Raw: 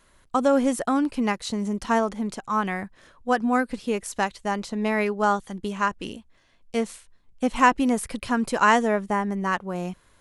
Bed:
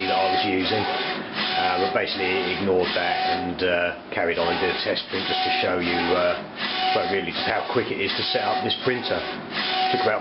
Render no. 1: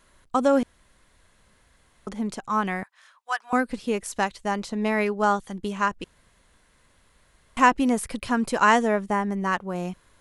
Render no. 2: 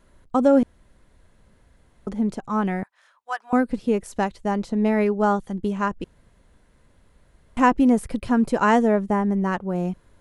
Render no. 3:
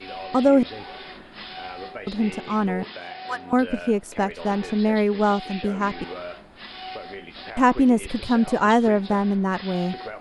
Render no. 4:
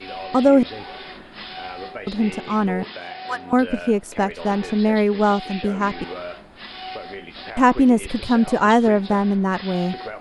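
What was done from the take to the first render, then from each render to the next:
0.63–2.07 s: room tone; 2.83–3.53 s: high-pass 900 Hz 24 dB/octave; 6.04–7.57 s: room tone
tilt shelf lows +6.5 dB, about 920 Hz; band-stop 1.1 kHz, Q 16
add bed -13.5 dB
trim +2.5 dB

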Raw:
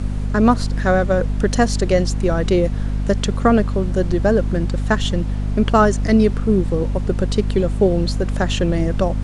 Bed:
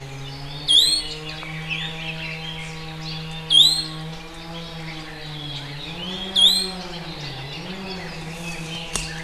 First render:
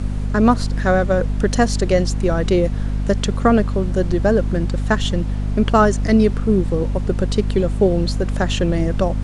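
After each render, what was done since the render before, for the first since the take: no audible change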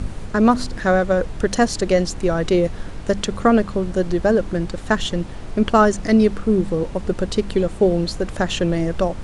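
de-hum 50 Hz, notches 5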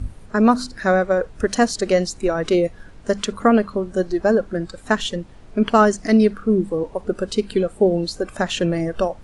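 noise print and reduce 12 dB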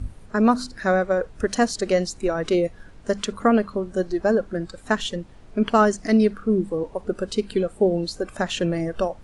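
trim -3 dB

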